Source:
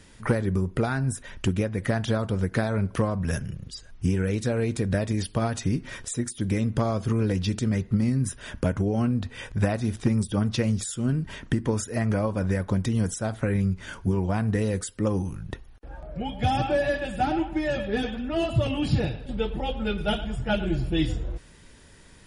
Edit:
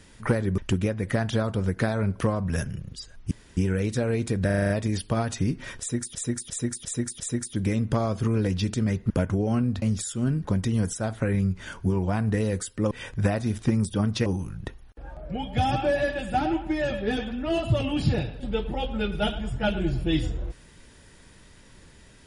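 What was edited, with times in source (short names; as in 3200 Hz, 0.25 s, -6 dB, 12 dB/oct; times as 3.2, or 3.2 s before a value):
0.58–1.33 cut
4.06 insert room tone 0.26 s
4.95 stutter 0.04 s, 7 plays
6.05–6.4 loop, 5 plays
7.95–8.57 cut
9.29–10.64 move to 15.12
11.27–12.66 cut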